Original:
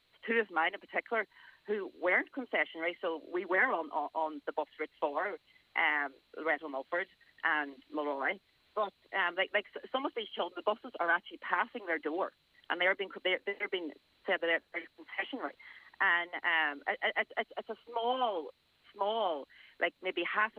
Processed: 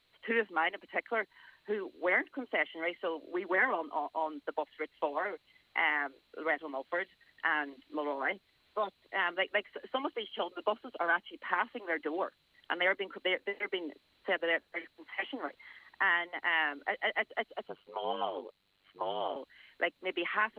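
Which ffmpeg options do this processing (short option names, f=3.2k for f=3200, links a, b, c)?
-filter_complex "[0:a]asettb=1/sr,asplit=3[a][b][c];[a]atrim=end=17.674[d];[b]atrim=start=17.67:end=19.36,asetpts=PTS-STARTPTS,afade=t=in:d=0.004:c=qsin,afade=t=out:st=1.686:d=0.004:c=qsin,aeval=exprs='val(0)*sin(2*PI*49*n/s)':c=same[e];[c]atrim=start=19.356[f];[d][e]acrossfade=d=0.004:c1=hsin:c2=qsin[g];[g][f]acrossfade=d=0.004:c1=qsin:c2=hsin"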